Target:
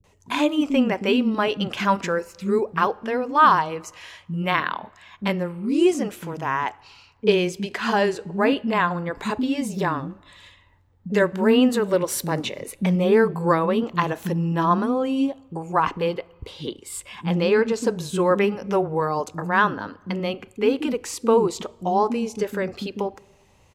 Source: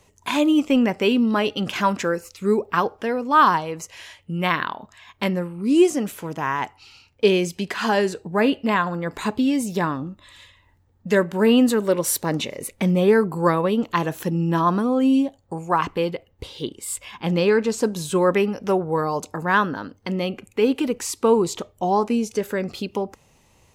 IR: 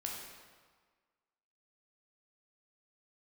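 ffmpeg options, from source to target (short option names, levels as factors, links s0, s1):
-filter_complex "[0:a]highshelf=f=6100:g=-7.5,acrossover=split=280[s0][s1];[s1]adelay=40[s2];[s0][s2]amix=inputs=2:normalize=0,asplit=2[s3][s4];[1:a]atrim=start_sample=2205[s5];[s4][s5]afir=irnorm=-1:irlink=0,volume=0.075[s6];[s3][s6]amix=inputs=2:normalize=0"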